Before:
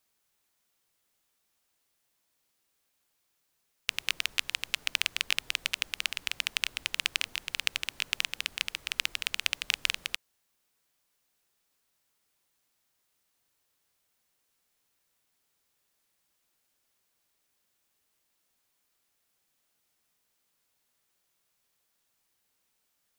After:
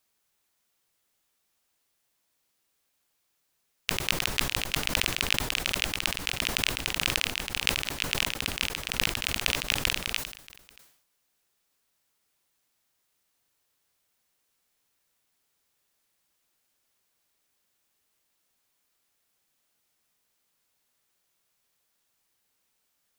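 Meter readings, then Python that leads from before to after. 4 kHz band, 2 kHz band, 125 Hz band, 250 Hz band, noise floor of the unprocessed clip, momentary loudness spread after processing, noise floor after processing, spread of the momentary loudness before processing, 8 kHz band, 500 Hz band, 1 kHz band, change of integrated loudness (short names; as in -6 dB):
+2.5 dB, +2.5 dB, +21.5 dB, +20.5 dB, -77 dBFS, 4 LU, -76 dBFS, 4 LU, +4.5 dB, +16.5 dB, +8.5 dB, +3.0 dB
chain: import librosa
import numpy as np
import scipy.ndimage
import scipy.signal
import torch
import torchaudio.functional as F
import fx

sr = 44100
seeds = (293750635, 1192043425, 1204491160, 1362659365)

y = x + 10.0 ** (-23.0 / 20.0) * np.pad(x, (int(631 * sr / 1000.0), 0))[:len(x)]
y = fx.sustainer(y, sr, db_per_s=84.0)
y = F.gain(torch.from_numpy(y), 1.0).numpy()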